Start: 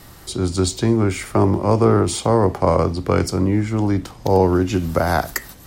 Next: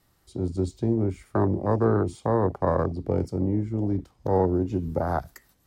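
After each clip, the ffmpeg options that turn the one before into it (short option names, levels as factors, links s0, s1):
-af "afwtdn=0.126,volume=0.447"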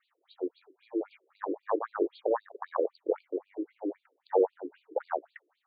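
-af "afftfilt=real='re*between(b*sr/1024,380*pow(3400/380,0.5+0.5*sin(2*PI*3.8*pts/sr))/1.41,380*pow(3400/380,0.5+0.5*sin(2*PI*3.8*pts/sr))*1.41)':imag='im*between(b*sr/1024,380*pow(3400/380,0.5+0.5*sin(2*PI*3.8*pts/sr))/1.41,380*pow(3400/380,0.5+0.5*sin(2*PI*3.8*pts/sr))*1.41)':win_size=1024:overlap=0.75,volume=1.19"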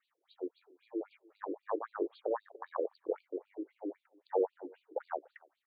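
-filter_complex "[0:a]asplit=2[s0][s1];[s1]adelay=291.5,volume=0.0501,highshelf=f=4000:g=-6.56[s2];[s0][s2]amix=inputs=2:normalize=0,volume=0.501"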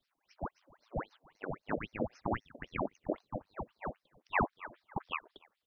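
-af "aeval=exprs='val(0)*sin(2*PI*1000*n/s+1000*0.9/3.7*sin(2*PI*3.7*n/s))':c=same,volume=1.33"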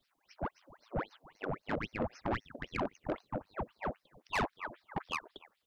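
-af "asoftclip=type=tanh:threshold=0.0237,volume=1.78"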